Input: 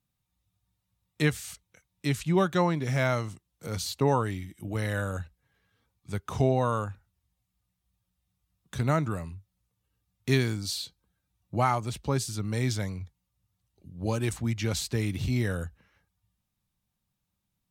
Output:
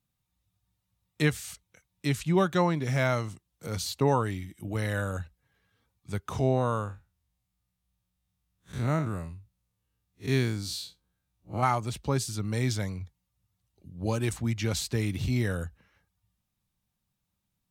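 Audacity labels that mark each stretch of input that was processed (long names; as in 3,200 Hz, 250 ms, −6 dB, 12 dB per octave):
6.390000	11.630000	spectrum smeared in time width 99 ms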